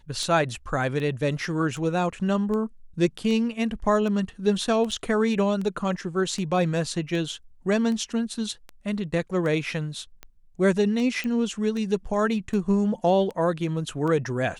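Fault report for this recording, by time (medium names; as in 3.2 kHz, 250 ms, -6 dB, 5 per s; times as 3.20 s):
tick 78 rpm -22 dBFS
4.91–4.92 s: dropout 6.3 ms
11.24 s: pop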